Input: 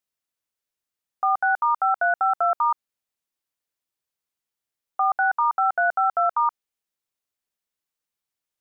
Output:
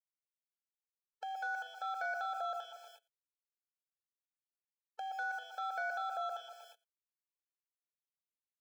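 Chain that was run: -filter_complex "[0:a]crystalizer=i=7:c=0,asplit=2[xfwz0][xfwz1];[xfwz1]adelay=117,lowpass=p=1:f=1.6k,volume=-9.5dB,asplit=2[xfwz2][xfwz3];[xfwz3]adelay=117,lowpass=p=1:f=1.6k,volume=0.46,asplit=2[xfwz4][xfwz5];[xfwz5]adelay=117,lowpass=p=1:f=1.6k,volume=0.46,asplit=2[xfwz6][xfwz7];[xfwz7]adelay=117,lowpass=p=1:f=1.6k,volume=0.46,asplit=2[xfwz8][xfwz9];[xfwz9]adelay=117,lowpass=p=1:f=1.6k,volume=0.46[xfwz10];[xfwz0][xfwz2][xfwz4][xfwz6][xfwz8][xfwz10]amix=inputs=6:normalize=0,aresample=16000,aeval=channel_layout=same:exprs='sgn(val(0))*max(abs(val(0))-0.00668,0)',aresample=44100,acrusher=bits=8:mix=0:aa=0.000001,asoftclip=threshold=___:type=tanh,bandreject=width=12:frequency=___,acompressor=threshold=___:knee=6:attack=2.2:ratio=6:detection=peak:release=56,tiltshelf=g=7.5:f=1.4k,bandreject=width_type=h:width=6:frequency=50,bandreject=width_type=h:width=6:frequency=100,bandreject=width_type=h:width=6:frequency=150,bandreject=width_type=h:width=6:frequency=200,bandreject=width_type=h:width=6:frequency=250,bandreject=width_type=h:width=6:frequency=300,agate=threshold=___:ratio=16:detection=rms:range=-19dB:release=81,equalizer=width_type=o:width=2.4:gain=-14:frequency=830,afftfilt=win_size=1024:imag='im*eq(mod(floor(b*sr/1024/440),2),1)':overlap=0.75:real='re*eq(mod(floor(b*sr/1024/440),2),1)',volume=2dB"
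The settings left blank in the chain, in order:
-15dB, 1.4k, -27dB, -41dB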